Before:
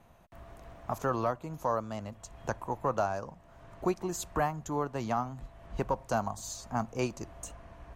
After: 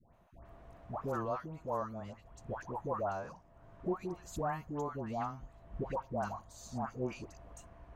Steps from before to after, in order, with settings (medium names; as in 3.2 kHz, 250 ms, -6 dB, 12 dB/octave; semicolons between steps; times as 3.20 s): treble shelf 2.7 kHz -8.5 dB; phase dispersion highs, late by 140 ms, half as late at 1.1 kHz; trim -5 dB